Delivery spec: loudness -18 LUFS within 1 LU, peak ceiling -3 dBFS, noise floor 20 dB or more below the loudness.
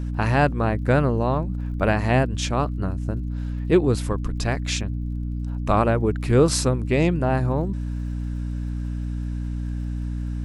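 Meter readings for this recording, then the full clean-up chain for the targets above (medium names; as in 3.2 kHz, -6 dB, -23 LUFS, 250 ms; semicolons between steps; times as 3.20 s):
tick rate 41 per s; hum 60 Hz; highest harmonic 300 Hz; hum level -25 dBFS; loudness -23.5 LUFS; peak level -5.0 dBFS; loudness target -18.0 LUFS
-> de-click; de-hum 60 Hz, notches 5; trim +5.5 dB; peak limiter -3 dBFS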